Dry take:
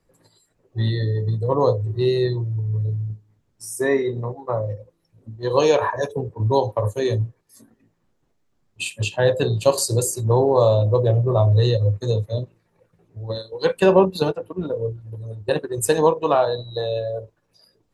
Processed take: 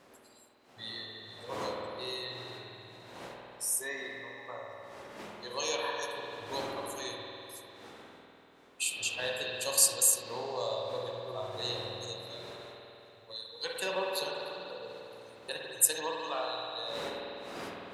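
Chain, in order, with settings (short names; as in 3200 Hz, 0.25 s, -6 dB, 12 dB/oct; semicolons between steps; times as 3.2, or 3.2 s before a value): wind noise 390 Hz -28 dBFS; differentiator; spring tank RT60 3.1 s, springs 49 ms, chirp 25 ms, DRR -1.5 dB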